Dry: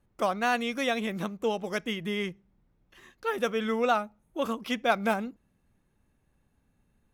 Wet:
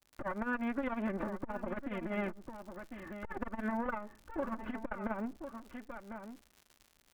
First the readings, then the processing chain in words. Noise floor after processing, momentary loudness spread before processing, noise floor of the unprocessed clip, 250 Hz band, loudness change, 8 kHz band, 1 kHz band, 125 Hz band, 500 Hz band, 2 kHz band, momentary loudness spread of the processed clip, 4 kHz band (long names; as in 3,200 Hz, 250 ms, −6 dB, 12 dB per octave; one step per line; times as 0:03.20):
−69 dBFS, 7 LU, −72 dBFS, −4.5 dB, −10.0 dB, below −15 dB, −10.5 dB, −5.5 dB, −11.0 dB, −9.5 dB, 12 LU, −23.0 dB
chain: lower of the sound and its delayed copy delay 3.4 ms
low-pass filter 1,700 Hz 24 dB per octave
downward expander −59 dBFS
parametric band 390 Hz −3 dB 2.8 octaves
downward compressor 5 to 1, threshold −40 dBFS, peak gain reduction 14.5 dB
surface crackle 120 per second −54 dBFS
on a send: single-tap delay 1,048 ms −11 dB
on the sum: saturating transformer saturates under 210 Hz
level +8.5 dB